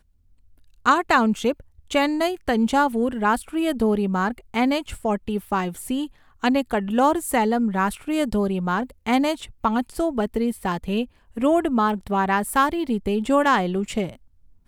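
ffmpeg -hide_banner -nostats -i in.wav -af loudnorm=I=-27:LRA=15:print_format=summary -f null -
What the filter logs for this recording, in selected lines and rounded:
Input Integrated:    -22.6 LUFS
Input True Peak:      -4.0 dBTP
Input LRA:             2.3 LU
Input Threshold:     -32.9 LUFS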